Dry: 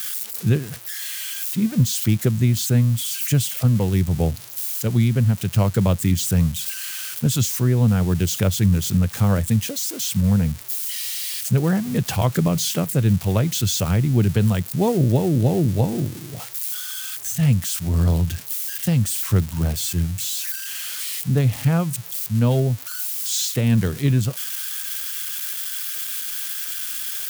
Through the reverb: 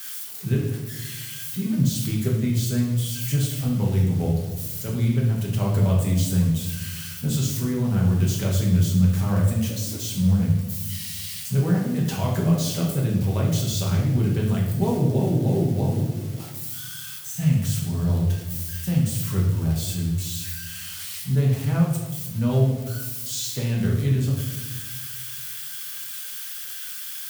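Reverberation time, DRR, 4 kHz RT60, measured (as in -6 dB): 1.2 s, -3.5 dB, 0.85 s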